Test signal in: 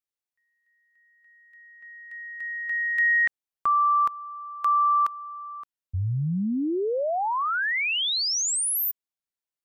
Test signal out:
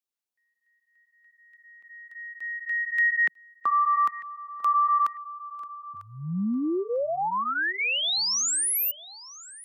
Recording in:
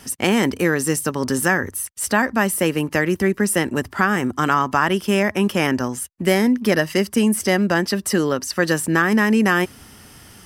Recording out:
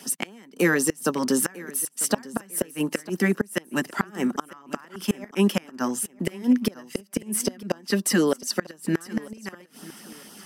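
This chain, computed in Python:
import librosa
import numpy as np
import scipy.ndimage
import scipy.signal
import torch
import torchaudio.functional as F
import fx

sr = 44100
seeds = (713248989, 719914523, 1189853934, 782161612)

y = scipy.signal.sosfilt(scipy.signal.butter(6, 170.0, 'highpass', fs=sr, output='sos'), x)
y = fx.filter_lfo_notch(y, sr, shape='sine', hz=3.9, low_hz=390.0, high_hz=2300.0, q=1.8)
y = fx.gate_flip(y, sr, shuts_db=-10.0, range_db=-29)
y = fx.echo_feedback(y, sr, ms=948, feedback_pct=29, wet_db=-19.0)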